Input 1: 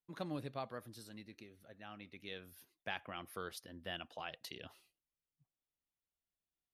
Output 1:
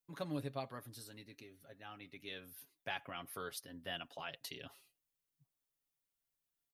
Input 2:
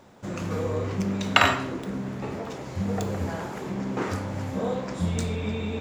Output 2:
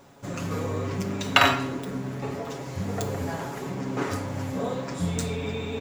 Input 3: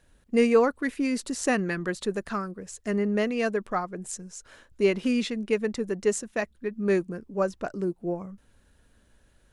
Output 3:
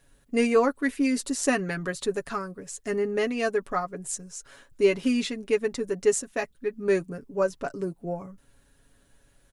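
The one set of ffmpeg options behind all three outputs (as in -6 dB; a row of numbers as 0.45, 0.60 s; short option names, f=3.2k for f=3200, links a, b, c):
-af "highshelf=f=8.7k:g=8,aecho=1:1:7.2:0.6,volume=-1dB"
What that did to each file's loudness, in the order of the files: +1.0, 0.0, +0.5 LU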